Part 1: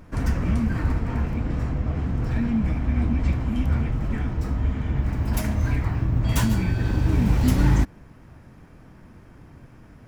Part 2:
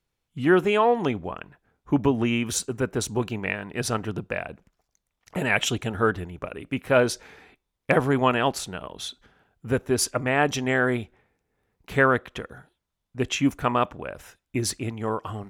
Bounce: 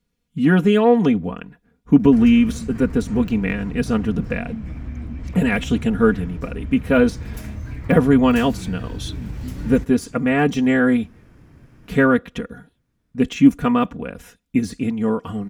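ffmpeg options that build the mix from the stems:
-filter_complex "[0:a]acompressor=threshold=-28dB:ratio=3,adelay=2000,volume=-1dB,asplit=2[a][b];[b]volume=-22.5dB[c];[1:a]deesser=0.75,equalizer=f=150:t=o:w=2.3:g=11,aecho=1:1:4.2:0.78,volume=0.5dB[d];[c]aecho=0:1:1157:1[e];[a][d][e]amix=inputs=3:normalize=0,equalizer=f=840:t=o:w=1:g=-5.5"

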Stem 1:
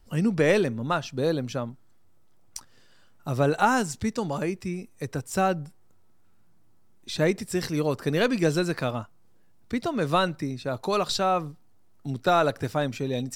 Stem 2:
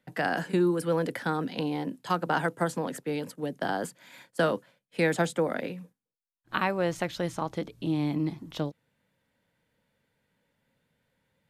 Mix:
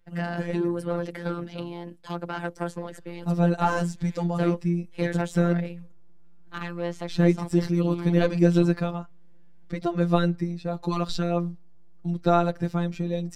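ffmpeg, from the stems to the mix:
-filter_complex "[0:a]lowshelf=f=410:g=11.5,volume=-1.5dB,afade=t=in:st=2.54:d=0.71:silence=0.251189[a];[1:a]asoftclip=type=tanh:threshold=-20dB,volume=0.5dB[b];[a][b]amix=inputs=2:normalize=0,highshelf=f=7.9k:g=-10,afftfilt=real='hypot(re,im)*cos(PI*b)':imag='0':win_size=1024:overlap=0.75"

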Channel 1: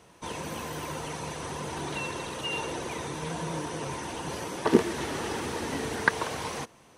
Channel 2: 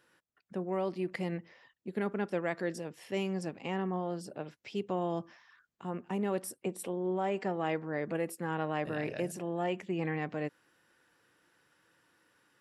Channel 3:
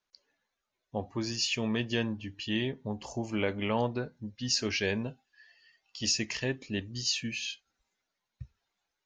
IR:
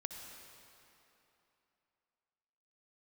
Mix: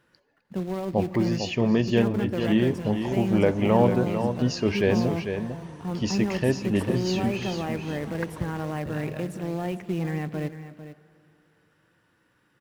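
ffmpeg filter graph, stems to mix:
-filter_complex "[0:a]adelay=2150,volume=-13dB[a];[1:a]acrusher=bits=3:mode=log:mix=0:aa=0.000001,alimiter=limit=-23dB:level=0:latency=1,volume=-0.5dB,asplit=3[b][c][d];[c]volume=-8.5dB[e];[d]volume=-10.5dB[f];[2:a]equalizer=f=560:w=0.46:g=12,volume=-3.5dB,asplit=3[g][h][i];[h]volume=-14.5dB[j];[i]volume=-6.5dB[k];[3:a]atrim=start_sample=2205[l];[e][j]amix=inputs=2:normalize=0[m];[m][l]afir=irnorm=-1:irlink=0[n];[f][k]amix=inputs=2:normalize=0,aecho=0:1:449:1[o];[a][b][g][n][o]amix=inputs=5:normalize=0,bass=f=250:g=10,treble=f=4k:g=-6"

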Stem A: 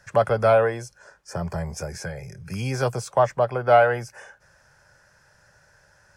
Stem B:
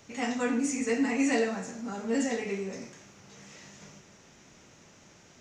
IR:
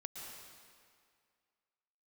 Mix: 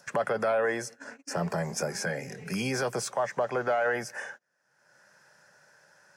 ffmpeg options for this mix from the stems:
-filter_complex "[0:a]adynamicequalizer=threshold=0.00631:dfrequency=1800:dqfactor=3.5:tfrequency=1800:tqfactor=3.5:attack=5:release=100:ratio=0.375:range=3.5:mode=boostabove:tftype=bell,acompressor=threshold=-23dB:ratio=3,alimiter=limit=-21.5dB:level=0:latency=1:release=27,volume=2.5dB,asplit=3[a][b][c];[b]volume=-23dB[d];[1:a]acompressor=threshold=-32dB:ratio=10,volume=-11dB,afade=t=in:st=0.89:d=0.4:silence=0.237137[e];[c]apad=whole_len=238525[f];[e][f]sidechaingate=range=-33dB:threshold=-53dB:ratio=16:detection=peak[g];[2:a]atrim=start_sample=2205[h];[d][h]afir=irnorm=-1:irlink=0[i];[a][g][i]amix=inputs=3:normalize=0,highpass=f=170:w=0.5412,highpass=f=170:w=1.3066,agate=range=-31dB:threshold=-44dB:ratio=16:detection=peak,acompressor=mode=upward:threshold=-38dB:ratio=2.5"

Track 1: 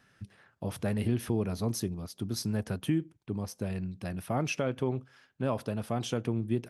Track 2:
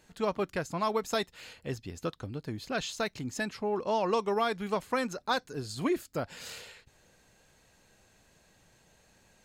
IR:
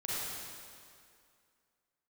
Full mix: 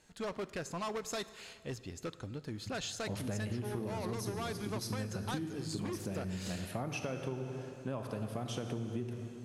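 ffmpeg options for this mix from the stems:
-filter_complex "[0:a]adelay=2450,volume=-5dB,asplit=2[a][b];[b]volume=-7.5dB[c];[1:a]volume=29dB,asoftclip=hard,volume=-29dB,lowpass=10k,highshelf=f=6.6k:g=7.5,volume=-4.5dB,asplit=2[d][e];[e]volume=-20dB[f];[2:a]atrim=start_sample=2205[g];[c][f]amix=inputs=2:normalize=0[h];[h][g]afir=irnorm=-1:irlink=0[i];[a][d][i]amix=inputs=3:normalize=0,acompressor=threshold=-34dB:ratio=6"

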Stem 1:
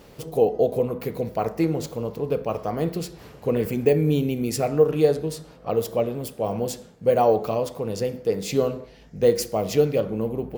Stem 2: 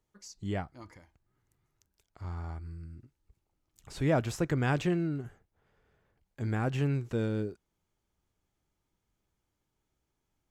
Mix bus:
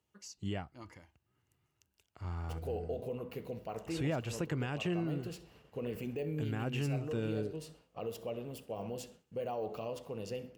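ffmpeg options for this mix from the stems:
-filter_complex "[0:a]agate=range=-33dB:threshold=-39dB:ratio=3:detection=peak,highshelf=f=9.5k:g=-4.5,alimiter=limit=-16.5dB:level=0:latency=1:release=60,adelay=2300,volume=-13.5dB,asplit=2[a][b];[b]volume=-20.5dB[c];[1:a]highpass=f=58:w=0.5412,highpass=f=58:w=1.3066,volume=-1dB[d];[c]aecho=0:1:66|132|198|264|330:1|0.35|0.122|0.0429|0.015[e];[a][d][e]amix=inputs=3:normalize=0,equalizer=f=2.8k:w=6.9:g=11.5,alimiter=level_in=2dB:limit=-24dB:level=0:latency=1:release=287,volume=-2dB"

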